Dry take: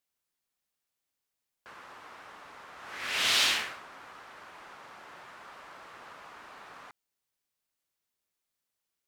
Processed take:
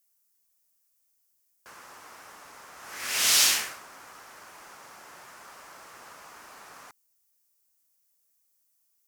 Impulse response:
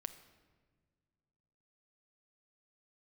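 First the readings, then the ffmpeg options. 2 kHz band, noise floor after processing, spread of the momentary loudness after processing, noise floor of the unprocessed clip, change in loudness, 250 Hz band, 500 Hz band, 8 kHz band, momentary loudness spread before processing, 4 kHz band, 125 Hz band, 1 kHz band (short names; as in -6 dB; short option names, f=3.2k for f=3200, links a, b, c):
0.0 dB, -72 dBFS, 19 LU, under -85 dBFS, +5.0 dB, 0.0 dB, 0.0 dB, +11.5 dB, 20 LU, +2.0 dB, n/a, 0.0 dB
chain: -af "aexciter=amount=4.9:drive=3:freq=5.1k"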